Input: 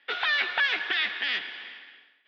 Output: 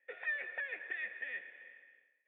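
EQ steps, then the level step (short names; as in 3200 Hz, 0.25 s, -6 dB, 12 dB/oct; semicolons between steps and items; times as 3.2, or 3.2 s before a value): vocal tract filter e; bell 140 Hz +8.5 dB 0.34 oct; -2.0 dB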